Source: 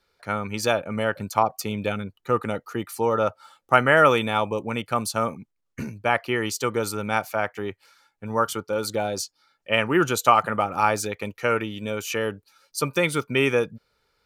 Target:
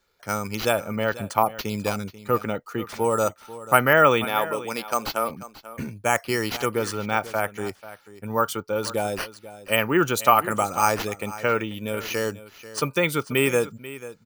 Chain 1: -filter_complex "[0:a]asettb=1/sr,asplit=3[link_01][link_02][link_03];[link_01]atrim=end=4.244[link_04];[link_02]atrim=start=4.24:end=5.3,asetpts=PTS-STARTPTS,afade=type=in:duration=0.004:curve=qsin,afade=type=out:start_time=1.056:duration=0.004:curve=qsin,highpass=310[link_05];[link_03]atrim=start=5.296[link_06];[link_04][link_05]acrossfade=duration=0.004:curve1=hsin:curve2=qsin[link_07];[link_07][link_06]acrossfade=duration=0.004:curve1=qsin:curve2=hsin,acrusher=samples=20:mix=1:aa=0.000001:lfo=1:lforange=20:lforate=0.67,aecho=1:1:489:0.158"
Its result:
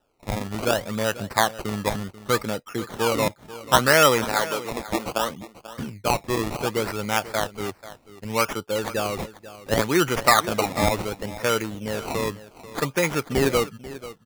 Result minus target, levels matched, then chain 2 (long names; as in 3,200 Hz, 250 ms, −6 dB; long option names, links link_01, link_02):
sample-and-hold swept by an LFO: distortion +15 dB
-filter_complex "[0:a]asettb=1/sr,asplit=3[link_01][link_02][link_03];[link_01]atrim=end=4.244[link_04];[link_02]atrim=start=4.24:end=5.3,asetpts=PTS-STARTPTS,afade=type=in:duration=0.004:curve=qsin,afade=type=out:start_time=1.056:duration=0.004:curve=qsin,highpass=310[link_05];[link_03]atrim=start=5.296[link_06];[link_04][link_05]acrossfade=duration=0.004:curve1=hsin:curve2=qsin[link_07];[link_07][link_06]acrossfade=duration=0.004:curve1=qsin:curve2=hsin,acrusher=samples=4:mix=1:aa=0.000001:lfo=1:lforange=4:lforate=0.67,aecho=1:1:489:0.158"